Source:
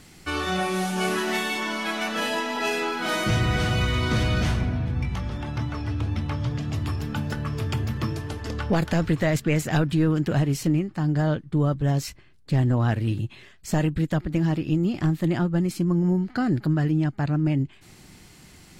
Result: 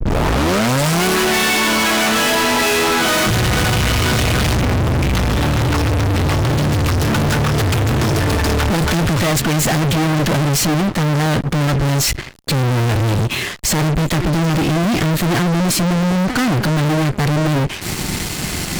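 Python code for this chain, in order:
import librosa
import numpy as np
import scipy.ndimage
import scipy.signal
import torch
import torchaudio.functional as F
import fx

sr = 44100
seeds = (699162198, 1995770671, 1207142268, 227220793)

y = fx.tape_start_head(x, sr, length_s=1.05)
y = fx.fuzz(y, sr, gain_db=48.0, gate_db=-52.0)
y = F.gain(torch.from_numpy(y), -1.5).numpy()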